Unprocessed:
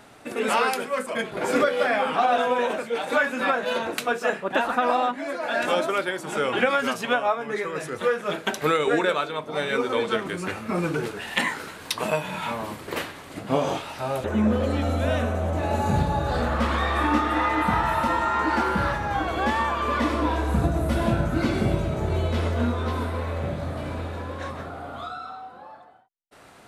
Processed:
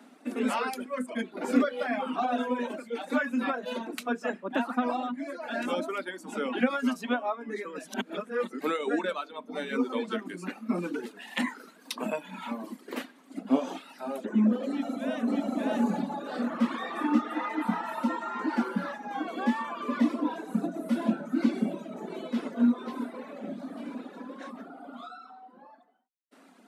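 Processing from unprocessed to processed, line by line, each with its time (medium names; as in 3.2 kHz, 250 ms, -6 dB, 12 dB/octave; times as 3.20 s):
7.87–8.61 s: reverse
14.68–15.55 s: echo throw 590 ms, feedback 35%, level 0 dB
whole clip: reverb removal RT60 1.5 s; Chebyshev high-pass 180 Hz, order 6; peaking EQ 250 Hz +14.5 dB 0.52 oct; trim -7.5 dB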